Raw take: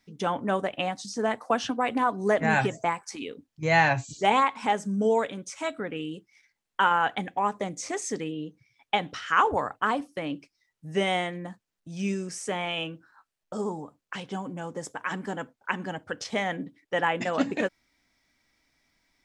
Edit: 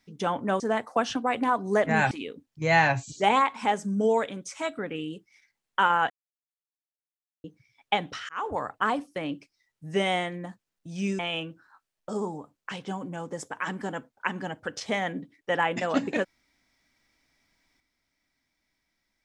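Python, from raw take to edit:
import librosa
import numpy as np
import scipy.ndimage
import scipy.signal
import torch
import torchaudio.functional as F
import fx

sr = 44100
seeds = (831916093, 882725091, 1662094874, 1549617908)

y = fx.edit(x, sr, fx.cut(start_s=0.6, length_s=0.54),
    fx.cut(start_s=2.65, length_s=0.47),
    fx.silence(start_s=7.11, length_s=1.34),
    fx.fade_in_span(start_s=9.3, length_s=0.6, curve='qsin'),
    fx.cut(start_s=12.2, length_s=0.43), tone=tone)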